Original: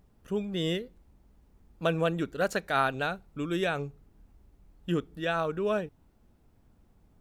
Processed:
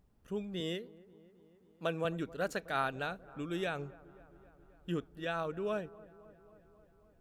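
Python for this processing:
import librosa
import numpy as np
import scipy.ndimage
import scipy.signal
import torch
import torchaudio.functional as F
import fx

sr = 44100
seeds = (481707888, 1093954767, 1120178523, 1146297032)

y = fx.highpass(x, sr, hz=170.0, slope=12, at=(0.6, 2.05))
y = fx.echo_wet_lowpass(y, sr, ms=267, feedback_pct=68, hz=1400.0, wet_db=-20.0)
y = y * 10.0 ** (-7.0 / 20.0)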